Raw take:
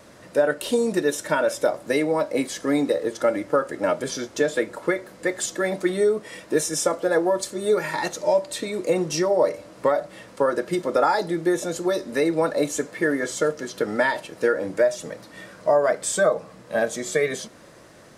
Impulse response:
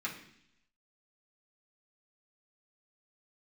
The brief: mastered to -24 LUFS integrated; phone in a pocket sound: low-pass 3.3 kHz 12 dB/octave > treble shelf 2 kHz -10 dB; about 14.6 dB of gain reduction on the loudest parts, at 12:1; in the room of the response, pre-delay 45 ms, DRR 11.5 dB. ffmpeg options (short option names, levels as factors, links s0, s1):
-filter_complex "[0:a]acompressor=threshold=0.0316:ratio=12,asplit=2[s0][s1];[1:a]atrim=start_sample=2205,adelay=45[s2];[s1][s2]afir=irnorm=-1:irlink=0,volume=0.178[s3];[s0][s3]amix=inputs=2:normalize=0,lowpass=3300,highshelf=f=2000:g=-10,volume=4.22"